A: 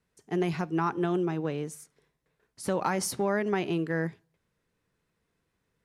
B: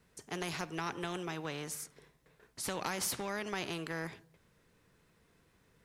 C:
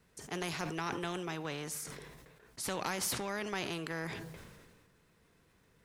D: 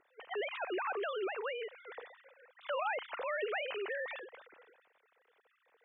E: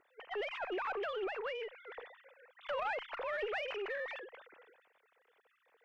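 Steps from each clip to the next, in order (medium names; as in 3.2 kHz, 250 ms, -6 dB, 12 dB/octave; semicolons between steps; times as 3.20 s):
spectrum-flattening compressor 2:1; trim -5.5 dB
decay stretcher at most 34 dB/s
formants replaced by sine waves
single-diode clipper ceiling -31 dBFS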